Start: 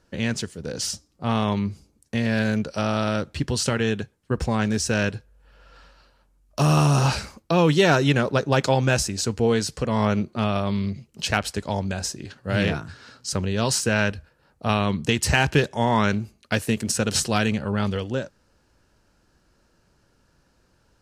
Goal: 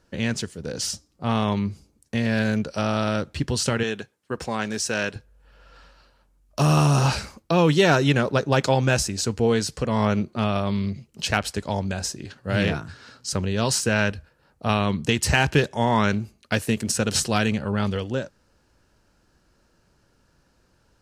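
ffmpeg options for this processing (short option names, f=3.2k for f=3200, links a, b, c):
-filter_complex "[0:a]asettb=1/sr,asplit=3[a][b][c];[a]atrim=end=3.834[d];[b]atrim=start=3.83:end=5.16,asetpts=PTS-STARTPTS,afade=t=in:d=0.004:c=qsin,afade=t=out:st=1.326:d=0.004:c=qsin,highpass=f=410:p=1[e];[c]atrim=start=5.156[f];[d][e]acrossfade=d=0.004:c1=hsin:c2=qsin[g];[g][f]acrossfade=d=0.004:c1=qsin:c2=hsin"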